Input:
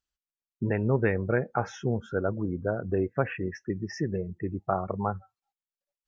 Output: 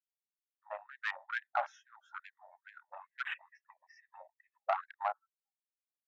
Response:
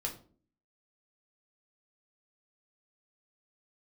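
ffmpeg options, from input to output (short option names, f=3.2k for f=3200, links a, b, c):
-filter_complex "[0:a]asettb=1/sr,asplit=3[a][b][c];[a]atrim=end=3.414[d];[b]atrim=start=3.41:end=4.1,asetpts=PTS-STARTPTS,afade=t=in:d=0.004:c=qsin,afade=t=out:st=0.686:d=0.004:c=qsin,highpass=290,equalizer=f=300:t=q:w=4:g=3,equalizer=f=550:t=q:w=4:g=5,equalizer=f=1.5k:t=q:w=4:g=-10,equalizer=f=2.3k:t=q:w=4:g=5,lowpass=f=4.2k:w=0.5412,lowpass=f=4.2k:w=1.3066[e];[c]atrim=start=4.096[f];[d][e]acrossfade=d=0.004:c1=hsin:c2=qsin[g];[g][f]acrossfade=d=0.004:c1=qsin:c2=hsin,afwtdn=0.0158,asoftclip=type=tanh:threshold=-18.5dB,afftfilt=real='re*gte(b*sr/1024,540*pow(1600/540,0.5+0.5*sin(2*PI*2.3*pts/sr)))':imag='im*gte(b*sr/1024,540*pow(1600/540,0.5+0.5*sin(2*PI*2.3*pts/sr)))':win_size=1024:overlap=0.75"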